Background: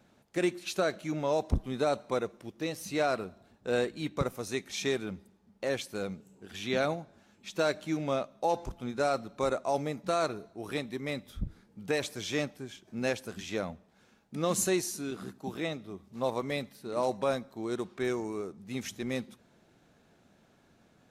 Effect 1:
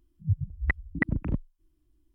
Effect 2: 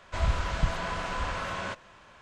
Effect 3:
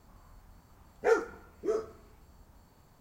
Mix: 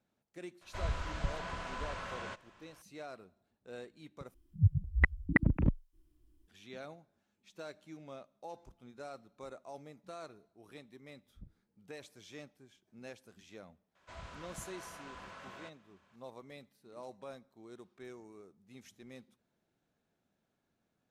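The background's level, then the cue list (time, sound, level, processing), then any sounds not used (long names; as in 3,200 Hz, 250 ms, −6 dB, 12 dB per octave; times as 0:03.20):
background −18 dB
0:00.61: mix in 2 −9 dB
0:04.34: overwrite with 1
0:13.95: mix in 2 −16.5 dB + high-pass filter 160 Hz 6 dB per octave
not used: 3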